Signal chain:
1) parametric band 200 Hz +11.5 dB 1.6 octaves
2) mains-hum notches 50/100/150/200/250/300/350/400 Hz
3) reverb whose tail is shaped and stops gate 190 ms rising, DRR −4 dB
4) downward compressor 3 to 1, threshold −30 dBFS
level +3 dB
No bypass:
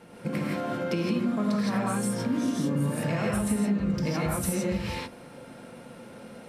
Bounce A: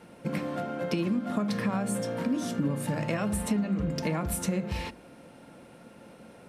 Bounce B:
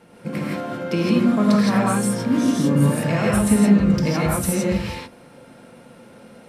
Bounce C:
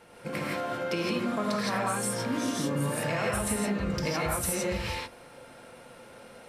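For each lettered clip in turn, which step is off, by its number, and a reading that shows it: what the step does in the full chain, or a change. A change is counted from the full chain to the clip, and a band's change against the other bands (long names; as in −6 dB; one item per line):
3, change in momentary loudness spread −13 LU
4, average gain reduction 5.5 dB
1, 250 Hz band −8.0 dB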